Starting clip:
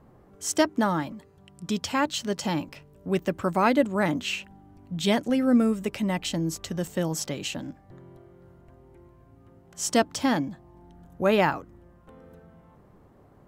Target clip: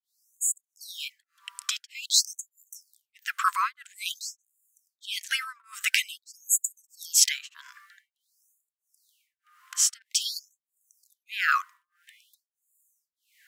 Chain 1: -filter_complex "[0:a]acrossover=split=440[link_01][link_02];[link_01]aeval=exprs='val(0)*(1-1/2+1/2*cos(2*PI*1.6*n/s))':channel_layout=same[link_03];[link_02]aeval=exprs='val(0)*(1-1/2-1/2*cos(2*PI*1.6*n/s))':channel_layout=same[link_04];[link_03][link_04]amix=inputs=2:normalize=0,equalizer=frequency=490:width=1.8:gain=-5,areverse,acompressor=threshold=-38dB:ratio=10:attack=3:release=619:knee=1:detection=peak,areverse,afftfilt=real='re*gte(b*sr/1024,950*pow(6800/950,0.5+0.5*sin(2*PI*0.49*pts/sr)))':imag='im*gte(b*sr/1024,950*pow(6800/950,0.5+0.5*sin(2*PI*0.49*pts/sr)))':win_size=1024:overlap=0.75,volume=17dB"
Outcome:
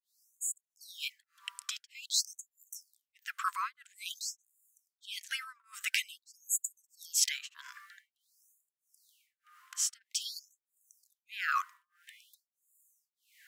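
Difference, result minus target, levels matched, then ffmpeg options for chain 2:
downward compressor: peak gain reduction +9 dB
-filter_complex "[0:a]acrossover=split=440[link_01][link_02];[link_01]aeval=exprs='val(0)*(1-1/2+1/2*cos(2*PI*1.6*n/s))':channel_layout=same[link_03];[link_02]aeval=exprs='val(0)*(1-1/2-1/2*cos(2*PI*1.6*n/s))':channel_layout=same[link_04];[link_03][link_04]amix=inputs=2:normalize=0,equalizer=frequency=490:width=1.8:gain=-5,areverse,acompressor=threshold=-28dB:ratio=10:attack=3:release=619:knee=1:detection=peak,areverse,afftfilt=real='re*gte(b*sr/1024,950*pow(6800/950,0.5+0.5*sin(2*PI*0.49*pts/sr)))':imag='im*gte(b*sr/1024,950*pow(6800/950,0.5+0.5*sin(2*PI*0.49*pts/sr)))':win_size=1024:overlap=0.75,volume=17dB"

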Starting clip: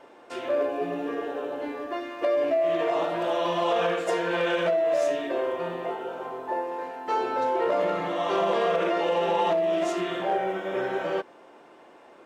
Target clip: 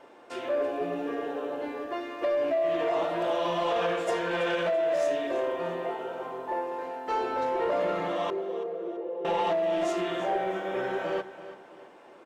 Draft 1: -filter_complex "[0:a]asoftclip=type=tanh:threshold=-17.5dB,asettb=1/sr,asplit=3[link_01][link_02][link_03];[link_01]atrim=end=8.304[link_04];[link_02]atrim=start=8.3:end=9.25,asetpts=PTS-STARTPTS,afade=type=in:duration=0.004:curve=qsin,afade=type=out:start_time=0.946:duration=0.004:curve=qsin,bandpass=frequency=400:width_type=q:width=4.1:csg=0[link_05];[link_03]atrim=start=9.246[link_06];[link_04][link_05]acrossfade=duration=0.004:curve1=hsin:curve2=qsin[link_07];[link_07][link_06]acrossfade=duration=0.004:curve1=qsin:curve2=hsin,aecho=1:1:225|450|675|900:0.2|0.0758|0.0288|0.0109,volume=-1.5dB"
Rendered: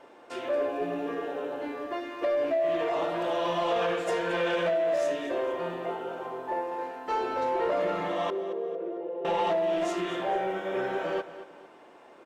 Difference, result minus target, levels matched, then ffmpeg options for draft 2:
echo 107 ms early
-filter_complex "[0:a]asoftclip=type=tanh:threshold=-17.5dB,asettb=1/sr,asplit=3[link_01][link_02][link_03];[link_01]atrim=end=8.304[link_04];[link_02]atrim=start=8.3:end=9.25,asetpts=PTS-STARTPTS,afade=type=in:duration=0.004:curve=qsin,afade=type=out:start_time=0.946:duration=0.004:curve=qsin,bandpass=frequency=400:width_type=q:width=4.1:csg=0[link_05];[link_03]atrim=start=9.246[link_06];[link_04][link_05]acrossfade=duration=0.004:curve1=hsin:curve2=qsin[link_07];[link_07][link_06]acrossfade=duration=0.004:curve1=qsin:curve2=hsin,aecho=1:1:332|664|996|1328:0.2|0.0758|0.0288|0.0109,volume=-1.5dB"

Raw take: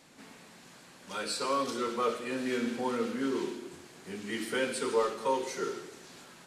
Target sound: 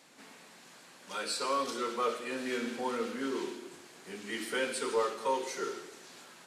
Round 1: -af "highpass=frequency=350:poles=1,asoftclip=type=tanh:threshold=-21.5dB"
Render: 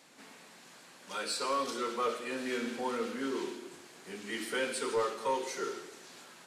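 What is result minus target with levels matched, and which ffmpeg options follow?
soft clipping: distortion +11 dB
-af "highpass=frequency=350:poles=1,asoftclip=type=tanh:threshold=-15dB"

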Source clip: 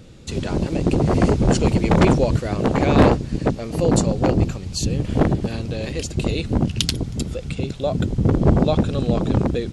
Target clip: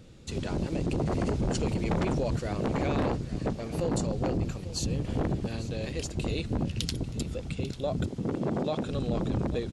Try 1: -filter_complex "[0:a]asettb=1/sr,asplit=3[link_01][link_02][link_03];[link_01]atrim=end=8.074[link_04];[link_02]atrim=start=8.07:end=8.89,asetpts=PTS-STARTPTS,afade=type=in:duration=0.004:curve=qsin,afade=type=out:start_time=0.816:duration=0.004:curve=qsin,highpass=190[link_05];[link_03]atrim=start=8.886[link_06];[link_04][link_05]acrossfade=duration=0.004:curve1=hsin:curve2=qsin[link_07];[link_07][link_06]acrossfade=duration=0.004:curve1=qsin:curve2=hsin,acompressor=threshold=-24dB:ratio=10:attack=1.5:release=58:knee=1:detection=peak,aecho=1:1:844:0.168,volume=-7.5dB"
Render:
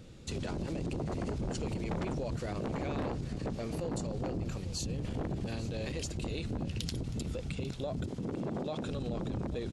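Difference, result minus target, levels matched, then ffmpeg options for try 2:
downward compressor: peak gain reduction +7 dB
-filter_complex "[0:a]asettb=1/sr,asplit=3[link_01][link_02][link_03];[link_01]atrim=end=8.074[link_04];[link_02]atrim=start=8.07:end=8.89,asetpts=PTS-STARTPTS,afade=type=in:duration=0.004:curve=qsin,afade=type=out:start_time=0.816:duration=0.004:curve=qsin,highpass=190[link_05];[link_03]atrim=start=8.886[link_06];[link_04][link_05]acrossfade=duration=0.004:curve1=hsin:curve2=qsin[link_07];[link_07][link_06]acrossfade=duration=0.004:curve1=qsin:curve2=hsin,acompressor=threshold=-16dB:ratio=10:attack=1.5:release=58:knee=1:detection=peak,aecho=1:1:844:0.168,volume=-7.5dB"

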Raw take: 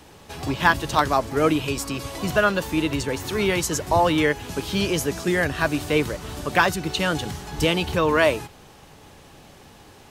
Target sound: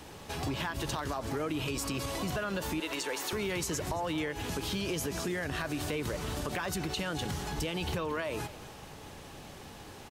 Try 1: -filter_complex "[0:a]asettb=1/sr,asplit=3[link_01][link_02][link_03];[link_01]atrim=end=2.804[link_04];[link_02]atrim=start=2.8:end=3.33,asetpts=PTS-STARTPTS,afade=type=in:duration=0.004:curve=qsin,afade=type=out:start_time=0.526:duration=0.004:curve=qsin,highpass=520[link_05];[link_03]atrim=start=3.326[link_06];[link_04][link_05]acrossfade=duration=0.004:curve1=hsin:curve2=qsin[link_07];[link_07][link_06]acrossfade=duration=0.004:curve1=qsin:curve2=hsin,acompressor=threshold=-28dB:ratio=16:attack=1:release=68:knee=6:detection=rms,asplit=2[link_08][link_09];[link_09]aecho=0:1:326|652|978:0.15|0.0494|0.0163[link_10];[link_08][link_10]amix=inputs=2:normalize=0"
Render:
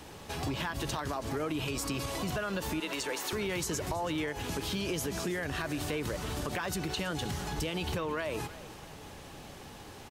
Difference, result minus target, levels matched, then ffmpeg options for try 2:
echo 102 ms late
-filter_complex "[0:a]asettb=1/sr,asplit=3[link_01][link_02][link_03];[link_01]atrim=end=2.804[link_04];[link_02]atrim=start=2.8:end=3.33,asetpts=PTS-STARTPTS,afade=type=in:duration=0.004:curve=qsin,afade=type=out:start_time=0.526:duration=0.004:curve=qsin,highpass=520[link_05];[link_03]atrim=start=3.326[link_06];[link_04][link_05]acrossfade=duration=0.004:curve1=hsin:curve2=qsin[link_07];[link_07][link_06]acrossfade=duration=0.004:curve1=qsin:curve2=hsin,acompressor=threshold=-28dB:ratio=16:attack=1:release=68:knee=6:detection=rms,asplit=2[link_08][link_09];[link_09]aecho=0:1:224|448|672:0.15|0.0494|0.0163[link_10];[link_08][link_10]amix=inputs=2:normalize=0"

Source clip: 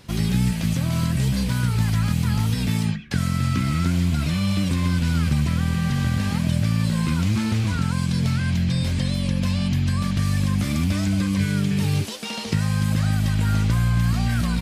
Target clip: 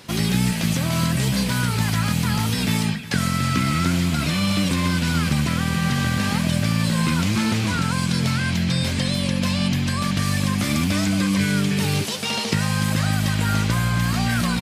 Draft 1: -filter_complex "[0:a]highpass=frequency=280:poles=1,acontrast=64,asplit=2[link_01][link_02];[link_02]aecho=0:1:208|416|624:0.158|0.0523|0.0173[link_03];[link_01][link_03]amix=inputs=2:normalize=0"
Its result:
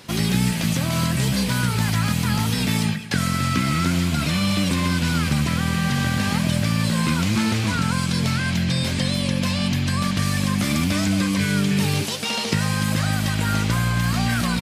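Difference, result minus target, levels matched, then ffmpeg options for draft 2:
echo 155 ms early
-filter_complex "[0:a]highpass=frequency=280:poles=1,acontrast=64,asplit=2[link_01][link_02];[link_02]aecho=0:1:363|726|1089:0.158|0.0523|0.0173[link_03];[link_01][link_03]amix=inputs=2:normalize=0"

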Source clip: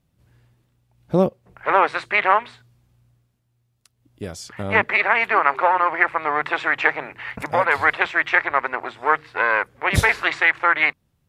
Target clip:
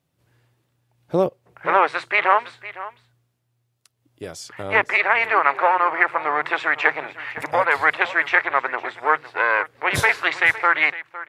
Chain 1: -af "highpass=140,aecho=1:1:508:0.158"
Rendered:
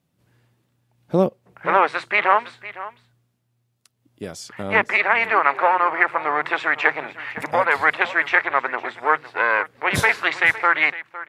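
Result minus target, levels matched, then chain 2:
250 Hz band +3.0 dB
-af "highpass=140,equalizer=frequency=210:width=3.4:gain=-11.5,aecho=1:1:508:0.158"

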